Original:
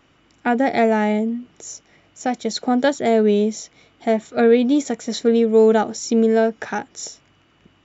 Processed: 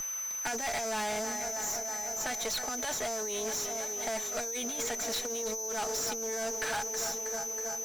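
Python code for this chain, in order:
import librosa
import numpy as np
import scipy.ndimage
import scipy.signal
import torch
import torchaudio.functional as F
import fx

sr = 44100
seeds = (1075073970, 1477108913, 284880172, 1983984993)

y = fx.echo_filtered(x, sr, ms=320, feedback_pct=78, hz=3200.0, wet_db=-16.5)
y = fx.over_compress(y, sr, threshold_db=-19.0, ratio=-0.5)
y = scipy.signal.sosfilt(scipy.signal.butter(2, 980.0, 'highpass', fs=sr, output='sos'), y)
y = y + 0.63 * np.pad(y, (int(4.6 * sr / 1000.0), 0))[:len(y)]
y = y + 10.0 ** (-33.0 / 20.0) * np.sin(2.0 * np.pi * 6100.0 * np.arange(len(y)) / sr)
y = fx.tube_stage(y, sr, drive_db=32.0, bias=0.75)
y = fx.band_squash(y, sr, depth_pct=40)
y = y * 10.0 ** (2.0 / 20.0)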